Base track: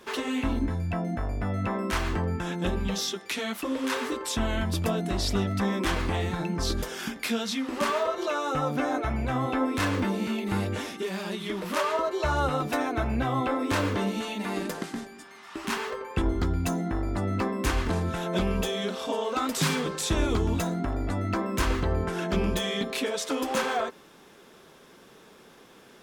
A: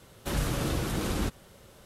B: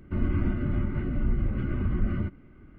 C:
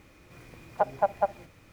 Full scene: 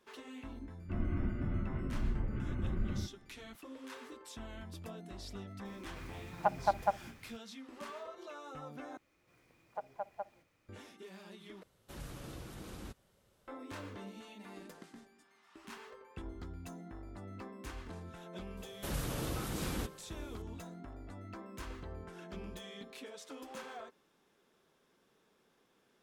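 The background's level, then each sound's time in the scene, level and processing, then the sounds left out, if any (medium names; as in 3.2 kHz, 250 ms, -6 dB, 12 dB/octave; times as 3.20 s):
base track -19.5 dB
0.78 s: add B -9 dB
5.65 s: add C -1.5 dB + peaking EQ 490 Hz -11.5 dB 0.67 oct
8.97 s: replace with C -16 dB + bass shelf 170 Hz -9 dB
11.63 s: replace with A -17.5 dB
18.57 s: add A -8.5 dB + treble shelf 11 kHz +7.5 dB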